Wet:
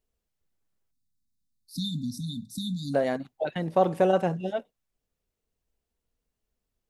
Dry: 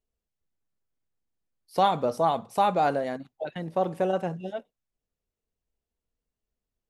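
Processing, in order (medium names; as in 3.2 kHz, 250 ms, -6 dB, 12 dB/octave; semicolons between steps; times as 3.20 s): spectral selection erased 0.91–2.94 s, 280–3500 Hz; trim +4 dB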